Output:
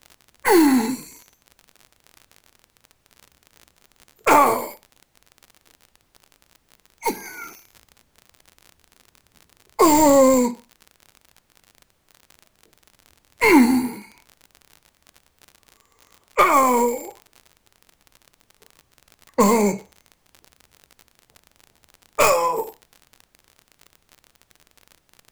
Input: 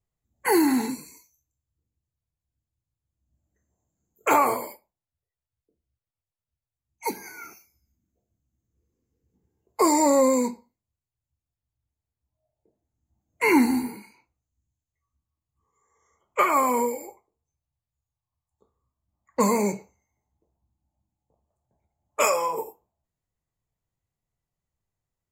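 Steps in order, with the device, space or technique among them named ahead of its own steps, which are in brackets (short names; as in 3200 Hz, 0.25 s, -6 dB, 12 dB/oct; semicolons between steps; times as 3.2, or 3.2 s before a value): record under a worn stylus (tracing distortion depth 0.084 ms; crackle 46/s -36 dBFS; pink noise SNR 42 dB); gain +5.5 dB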